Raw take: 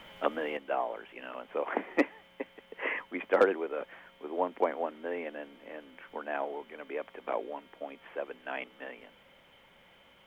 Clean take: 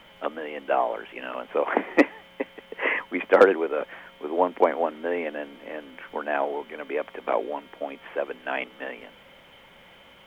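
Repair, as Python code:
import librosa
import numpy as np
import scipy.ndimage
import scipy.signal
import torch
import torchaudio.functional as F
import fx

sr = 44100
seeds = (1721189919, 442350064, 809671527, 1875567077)

y = fx.gain(x, sr, db=fx.steps((0.0, 0.0), (0.57, 8.5)))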